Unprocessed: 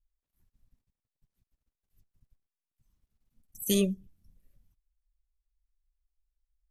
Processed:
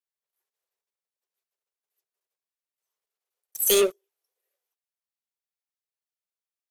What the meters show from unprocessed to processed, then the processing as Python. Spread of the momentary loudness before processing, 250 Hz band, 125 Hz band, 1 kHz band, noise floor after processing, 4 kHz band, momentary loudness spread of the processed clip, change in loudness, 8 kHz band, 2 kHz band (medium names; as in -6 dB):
12 LU, -5.5 dB, under -15 dB, no reading, under -85 dBFS, +8.5 dB, 6 LU, +7.5 dB, +10.5 dB, +10.5 dB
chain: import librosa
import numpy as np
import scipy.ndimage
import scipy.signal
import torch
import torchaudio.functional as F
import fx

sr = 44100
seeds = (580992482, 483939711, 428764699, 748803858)

p1 = scipy.signal.sosfilt(scipy.signal.butter(16, 380.0, 'highpass', fs=sr, output='sos'), x)
p2 = fx.leveller(p1, sr, passes=3)
p3 = 10.0 ** (-32.5 / 20.0) * np.tanh(p2 / 10.0 ** (-32.5 / 20.0))
p4 = p2 + (p3 * librosa.db_to_amplitude(-8.0))
y = p4 * librosa.db_to_amplitude(2.0)